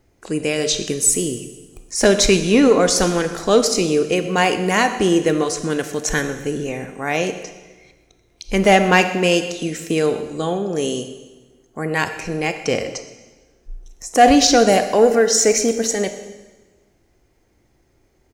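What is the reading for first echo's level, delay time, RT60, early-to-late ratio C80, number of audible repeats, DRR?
-20.0 dB, 0.126 s, 1.2 s, 11.5 dB, 1, 8.5 dB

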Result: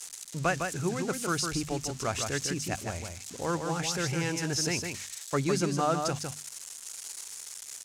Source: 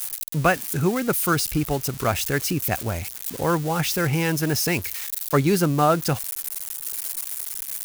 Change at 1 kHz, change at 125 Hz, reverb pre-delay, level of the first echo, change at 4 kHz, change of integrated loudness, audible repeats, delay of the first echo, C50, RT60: -8.0 dB, -9.0 dB, none, -5.5 dB, -4.5 dB, -8.0 dB, 1, 0.156 s, none, none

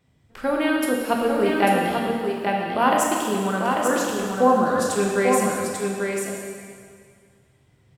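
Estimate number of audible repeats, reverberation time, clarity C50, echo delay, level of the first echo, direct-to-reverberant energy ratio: 1, 2.1 s, -1.5 dB, 0.843 s, -4.5 dB, -3.5 dB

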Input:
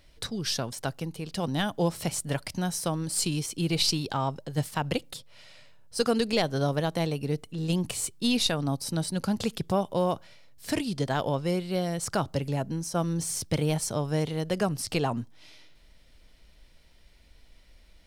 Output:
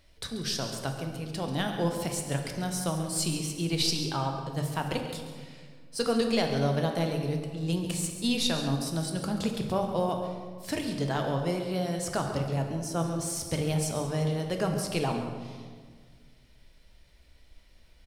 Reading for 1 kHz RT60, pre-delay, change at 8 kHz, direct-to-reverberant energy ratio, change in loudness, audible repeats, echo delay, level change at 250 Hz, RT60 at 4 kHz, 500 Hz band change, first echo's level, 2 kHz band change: 1.6 s, 3 ms, -2.0 dB, 3.0 dB, -1.5 dB, 2, 0.137 s, -1.0 dB, 1.1 s, -1.0 dB, -13.0 dB, -1.5 dB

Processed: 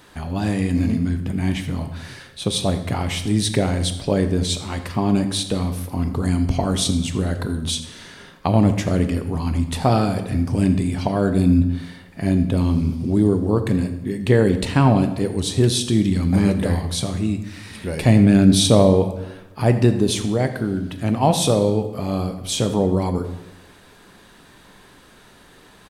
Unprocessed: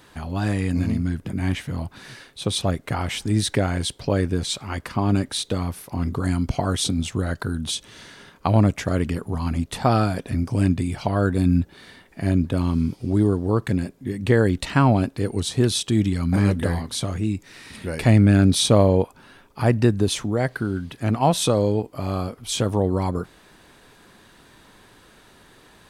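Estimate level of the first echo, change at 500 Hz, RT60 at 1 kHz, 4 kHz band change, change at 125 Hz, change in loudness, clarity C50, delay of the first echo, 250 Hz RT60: -16.5 dB, +2.5 dB, 0.95 s, +2.5 dB, +1.5 dB, +2.5 dB, 10.0 dB, 83 ms, 1.1 s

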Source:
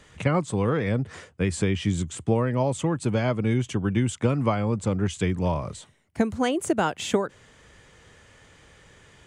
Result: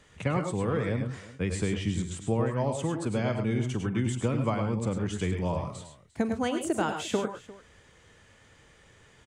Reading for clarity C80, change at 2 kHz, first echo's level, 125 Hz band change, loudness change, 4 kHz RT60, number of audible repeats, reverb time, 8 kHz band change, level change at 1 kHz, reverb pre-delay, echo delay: none, -4.5 dB, -17.5 dB, -4.0 dB, -4.5 dB, none, 3, none, -4.5 dB, -4.5 dB, none, 45 ms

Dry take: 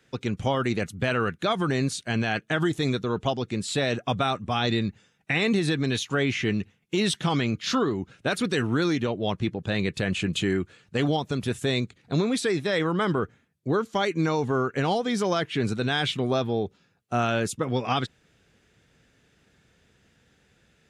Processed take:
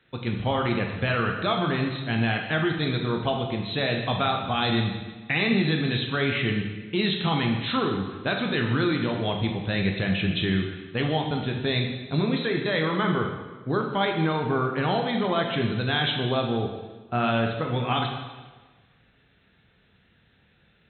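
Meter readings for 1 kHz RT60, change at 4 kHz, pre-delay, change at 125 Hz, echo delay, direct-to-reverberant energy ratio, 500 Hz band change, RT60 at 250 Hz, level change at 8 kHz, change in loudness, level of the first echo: 1.3 s, +2.0 dB, 6 ms, +2.0 dB, none, 2.0 dB, -0.5 dB, 1.3 s, under -40 dB, +0.5 dB, none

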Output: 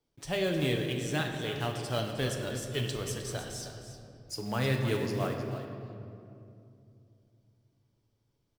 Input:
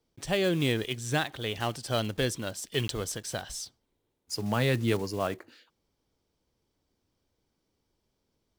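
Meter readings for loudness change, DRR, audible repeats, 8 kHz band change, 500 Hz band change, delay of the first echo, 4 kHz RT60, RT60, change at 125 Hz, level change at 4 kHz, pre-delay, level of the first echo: -2.5 dB, 1.5 dB, 1, -4.0 dB, -2.0 dB, 0.31 s, 1.4 s, 2.6 s, -0.5 dB, -3.0 dB, 6 ms, -11.5 dB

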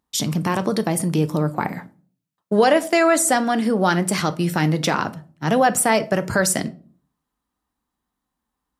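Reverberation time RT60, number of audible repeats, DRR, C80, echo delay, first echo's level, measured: 0.45 s, none, 11.0 dB, 24.5 dB, none, none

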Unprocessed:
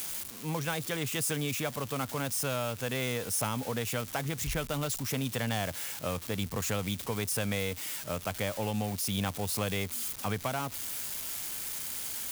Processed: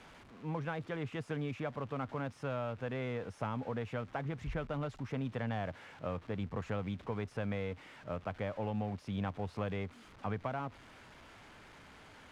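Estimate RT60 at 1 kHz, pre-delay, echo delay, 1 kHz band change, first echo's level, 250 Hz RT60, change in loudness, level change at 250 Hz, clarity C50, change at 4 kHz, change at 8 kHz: none, none, none, -4.5 dB, none, none, -7.0 dB, -4.0 dB, none, -17.0 dB, under -30 dB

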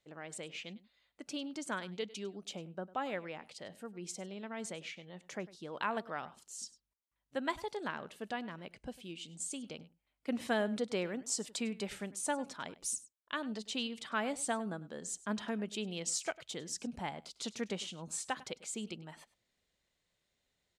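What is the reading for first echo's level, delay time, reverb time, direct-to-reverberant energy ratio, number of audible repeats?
-19.0 dB, 0.1 s, none, none, 1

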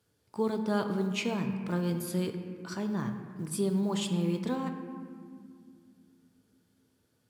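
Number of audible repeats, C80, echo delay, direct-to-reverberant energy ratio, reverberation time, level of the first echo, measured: none, 8.5 dB, none, 5.5 dB, 2.1 s, none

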